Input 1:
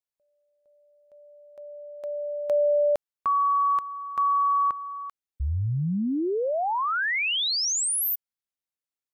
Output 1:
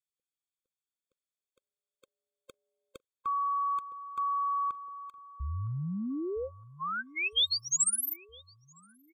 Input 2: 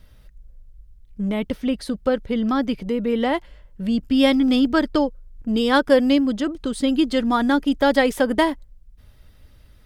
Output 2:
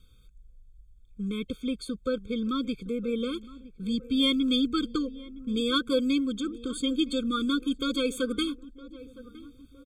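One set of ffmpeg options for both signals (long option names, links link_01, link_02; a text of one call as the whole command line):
ffmpeg -i in.wav -filter_complex "[0:a]equalizer=frequency=7100:width=1.1:gain=12,asplit=2[link_01][link_02];[link_02]adelay=963,lowpass=frequency=1200:poles=1,volume=-17.5dB,asplit=2[link_03][link_04];[link_04]adelay=963,lowpass=frequency=1200:poles=1,volume=0.52,asplit=2[link_05][link_06];[link_06]adelay=963,lowpass=frequency=1200:poles=1,volume=0.52,asplit=2[link_07][link_08];[link_08]adelay=963,lowpass=frequency=1200:poles=1,volume=0.52[link_09];[link_01][link_03][link_05][link_07][link_09]amix=inputs=5:normalize=0,acrossover=split=4100[link_10][link_11];[link_10]aexciter=amount=3.7:drive=3.8:freq=2900[link_12];[link_12][link_11]amix=inputs=2:normalize=0,afftfilt=real='re*eq(mod(floor(b*sr/1024/530),2),0)':imag='im*eq(mod(floor(b*sr/1024/530),2),0)':win_size=1024:overlap=0.75,volume=-8dB" out.wav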